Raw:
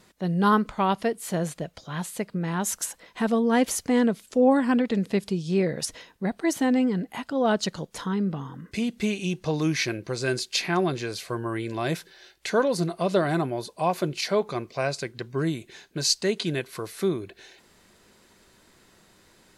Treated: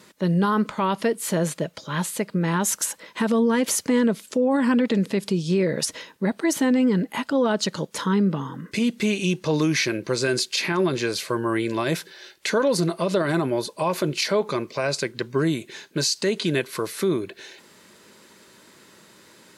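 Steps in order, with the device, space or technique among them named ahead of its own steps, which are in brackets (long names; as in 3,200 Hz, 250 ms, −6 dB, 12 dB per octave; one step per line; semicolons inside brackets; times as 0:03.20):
PA system with an anti-feedback notch (high-pass filter 150 Hz 12 dB per octave; Butterworth band-reject 730 Hz, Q 6.6; brickwall limiter −20 dBFS, peak gain reduction 11.5 dB)
level +7 dB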